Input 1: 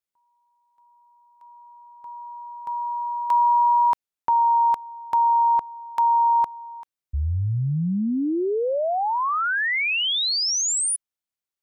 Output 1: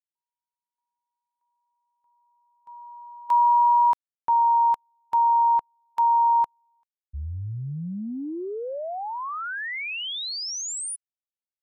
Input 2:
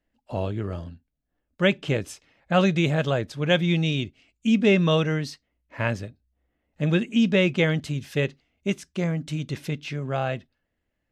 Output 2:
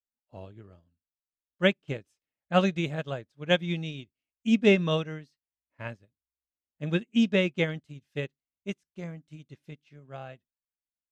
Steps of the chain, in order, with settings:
expander for the loud parts 2.5 to 1, over −37 dBFS

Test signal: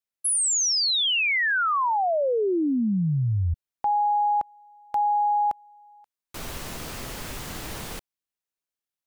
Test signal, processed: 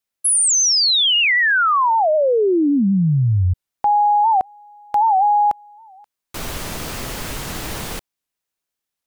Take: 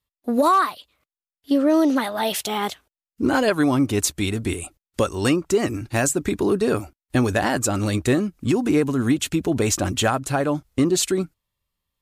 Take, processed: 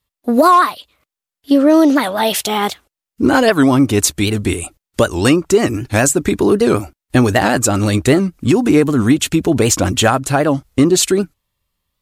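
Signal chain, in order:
wow of a warped record 78 rpm, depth 160 cents
level +7.5 dB

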